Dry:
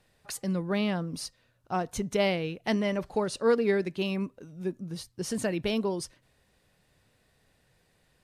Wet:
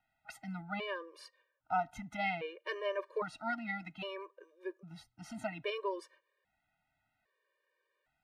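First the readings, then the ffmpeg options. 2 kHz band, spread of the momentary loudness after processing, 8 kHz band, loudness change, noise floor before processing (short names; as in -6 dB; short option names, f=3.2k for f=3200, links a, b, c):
-4.0 dB, 16 LU, -19.5 dB, -9.0 dB, -69 dBFS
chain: -filter_complex "[0:a]agate=range=-6dB:threshold=-56dB:ratio=16:detection=peak,acrossover=split=580 2700:gain=0.178 1 0.1[a][b][c];[a][b][c]amix=inputs=3:normalize=0,afftfilt=real='re*gt(sin(2*PI*0.62*pts/sr)*(1-2*mod(floor(b*sr/1024/310),2)),0)':imag='im*gt(sin(2*PI*0.62*pts/sr)*(1-2*mod(floor(b*sr/1024/310),2)),0)':win_size=1024:overlap=0.75,volume=2dB"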